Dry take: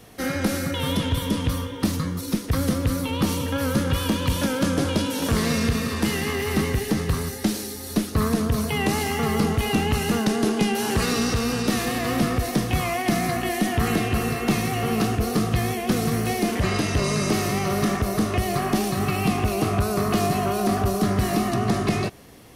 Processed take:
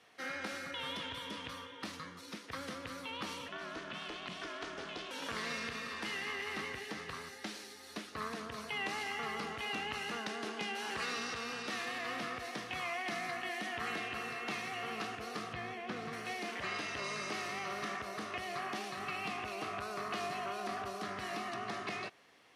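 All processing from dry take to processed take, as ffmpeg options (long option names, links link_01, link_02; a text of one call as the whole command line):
ffmpeg -i in.wav -filter_complex "[0:a]asettb=1/sr,asplit=3[link_01][link_02][link_03];[link_01]atrim=end=3.484[link_04];[link_02]atrim=start=3.48:end=5.11,asetpts=PTS-STARTPTS,afade=type=in:duration=0.004:curve=qsin,afade=type=out:start_time=1.626:duration=0.004:curve=qsin,lowpass=7500,afreqshift=-69,aeval=exprs='val(0)*sin(2*PI*180*n/s)':channel_layout=same[link_05];[link_03]atrim=start=5.106[link_06];[link_04][link_05]acrossfade=duration=0.004:curve1=hsin:curve2=qsin[link_07];[link_07][link_06]acrossfade=duration=0.004:curve1=qsin:curve2=hsin,asettb=1/sr,asplit=3[link_08][link_09][link_10];[link_08]atrim=end=15.534[link_11];[link_09]atrim=start=15.53:end=16.13,asetpts=PTS-STARTPTS,afade=type=in:duration=0.004:curve=qsin,afade=type=out:start_time=0.596:duration=0.004:curve=qsin,lowpass=frequency=2400:poles=1,lowshelf=frequency=220:gain=5[link_12];[link_10]atrim=start=16.126[link_13];[link_11][link_12]acrossfade=duration=0.004:curve1=hsin:curve2=qsin[link_14];[link_14][link_13]acrossfade=duration=0.004:curve1=qsin:curve2=hsin,lowpass=2000,aderivative,volume=5.5dB" out.wav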